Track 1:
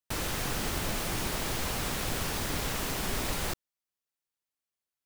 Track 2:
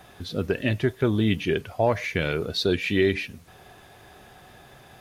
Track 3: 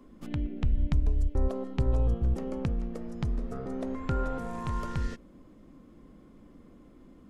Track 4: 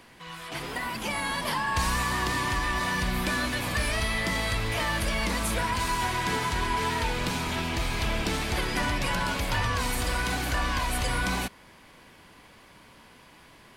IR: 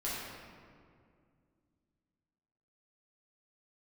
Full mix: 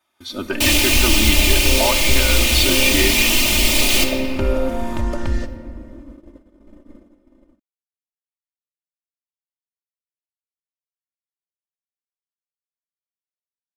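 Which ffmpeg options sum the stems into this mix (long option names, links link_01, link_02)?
-filter_complex "[0:a]highshelf=frequency=2000:width_type=q:width=3:gain=7.5,adelay=500,volume=-5dB,asplit=2[link_01][link_02];[link_02]volume=-4dB[link_03];[1:a]highpass=frequency=700:poles=1,aecho=1:1:0.9:0.43,volume=-4.5dB,asplit=2[link_04][link_05];[link_05]volume=-16.5dB[link_06];[2:a]equalizer=frequency=510:width_type=o:width=1.2:gain=7,adelay=300,volume=-6.5dB,asplit=2[link_07][link_08];[link_08]volume=-13.5dB[link_09];[4:a]atrim=start_sample=2205[link_10];[link_03][link_06][link_09]amix=inputs=3:normalize=0[link_11];[link_11][link_10]afir=irnorm=-1:irlink=0[link_12];[link_01][link_04][link_07][link_12]amix=inputs=4:normalize=0,agate=range=-17dB:threshold=-53dB:ratio=16:detection=peak,aecho=1:1:3.3:0.97,dynaudnorm=framelen=120:gausssize=5:maxgain=12dB"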